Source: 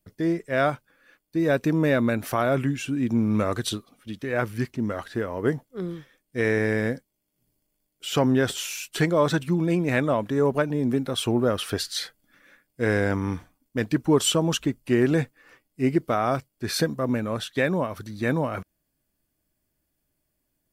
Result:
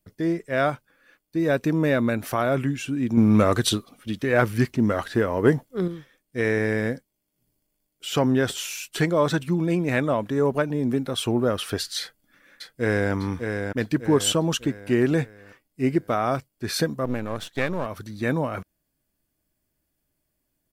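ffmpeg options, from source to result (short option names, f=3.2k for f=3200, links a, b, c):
-filter_complex "[0:a]asettb=1/sr,asplit=3[a][b][c];[a]atrim=end=3.174[d];[b]atrim=start=3.17:end=5.88,asetpts=PTS-STARTPTS,afade=t=in:d=0.004:c=qsin,afade=t=out:st=2.706:d=0.004:c=qsin,acontrast=54[e];[c]atrim=start=5.876[f];[d][e]acrossfade=d=0.004:c1=hsin:c2=qsin[g];[g][f]acrossfade=d=0.004:c1=qsin:c2=hsin,asplit=2[h][i];[i]afade=t=in:st=12:d=0.01,afade=t=out:st=13.12:d=0.01,aecho=0:1:600|1200|1800|2400|3000:0.530884|0.238898|0.107504|0.0483768|0.0217696[j];[h][j]amix=inputs=2:normalize=0,asettb=1/sr,asplit=3[k][l][m];[k]atrim=end=17.054[n];[l]atrim=start=17.05:end=17.86,asetpts=PTS-STARTPTS,afade=t=in:d=0.004:c=qsin,afade=t=out:st=0.806:d=0.004:c=qsin,aeval=exprs='if(lt(val(0),0),0.251*val(0),val(0))':c=same[o];[m]atrim=start=17.856[p];[n][o]acrossfade=d=0.004:c1=hsin:c2=qsin[q];[q][p]acrossfade=d=0.004:c1=qsin:c2=hsin"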